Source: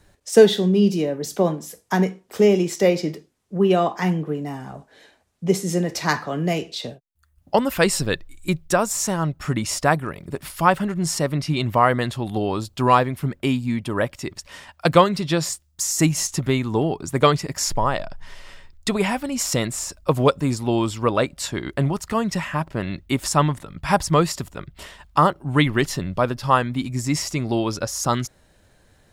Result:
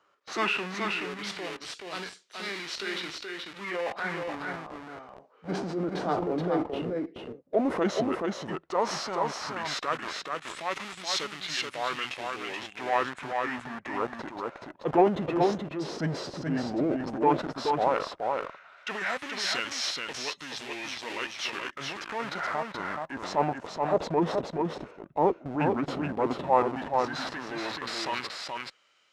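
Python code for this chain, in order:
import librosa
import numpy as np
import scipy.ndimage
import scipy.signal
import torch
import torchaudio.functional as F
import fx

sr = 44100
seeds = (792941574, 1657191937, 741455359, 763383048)

p1 = fx.highpass(x, sr, hz=290.0, slope=6)
p2 = fx.schmitt(p1, sr, flips_db=-29.5)
p3 = p1 + F.gain(torch.from_numpy(p2), -5.0).numpy()
p4 = fx.filter_lfo_bandpass(p3, sr, shape='sine', hz=0.11, low_hz=540.0, high_hz=4100.0, q=1.1)
p5 = fx.transient(p4, sr, attack_db=-6, sustain_db=4)
p6 = fx.formant_shift(p5, sr, semitones=-5)
p7 = p6 + fx.echo_single(p6, sr, ms=427, db=-4.0, dry=0)
y = F.gain(torch.from_numpy(p7), -1.5).numpy()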